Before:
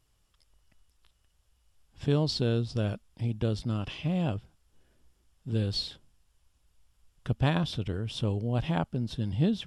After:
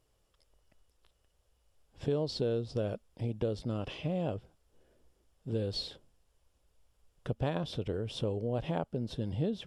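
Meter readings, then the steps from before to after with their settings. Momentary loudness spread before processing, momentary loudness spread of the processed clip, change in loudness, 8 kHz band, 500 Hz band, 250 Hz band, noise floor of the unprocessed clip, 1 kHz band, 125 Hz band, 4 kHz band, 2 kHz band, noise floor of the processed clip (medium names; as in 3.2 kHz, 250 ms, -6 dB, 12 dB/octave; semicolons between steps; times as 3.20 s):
8 LU, 6 LU, -4.5 dB, -6.0 dB, +0.5 dB, -6.0 dB, -71 dBFS, -4.5 dB, -7.0 dB, -6.0 dB, -8.0 dB, -74 dBFS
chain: peaking EQ 500 Hz +11.5 dB 1.2 oct; compression 2.5:1, threshold -27 dBFS, peak gain reduction 8 dB; trim -4 dB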